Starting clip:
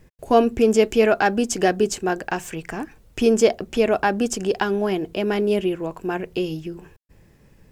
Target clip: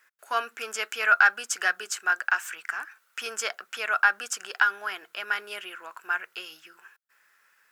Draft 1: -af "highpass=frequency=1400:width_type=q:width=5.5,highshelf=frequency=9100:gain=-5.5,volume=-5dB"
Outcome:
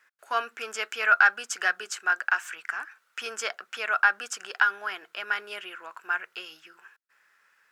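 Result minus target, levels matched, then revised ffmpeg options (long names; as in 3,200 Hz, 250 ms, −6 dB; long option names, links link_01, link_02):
8,000 Hz band −3.5 dB
-af "highpass=frequency=1400:width_type=q:width=5.5,highshelf=frequency=9100:gain=5.5,volume=-5dB"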